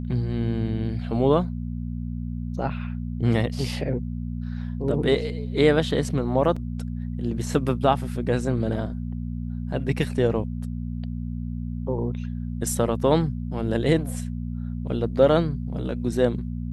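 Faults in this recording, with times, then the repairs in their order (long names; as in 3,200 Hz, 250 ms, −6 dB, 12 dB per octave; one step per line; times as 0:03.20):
mains hum 60 Hz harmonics 4 −30 dBFS
0:06.56: drop-out 4.8 ms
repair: hum removal 60 Hz, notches 4
repair the gap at 0:06.56, 4.8 ms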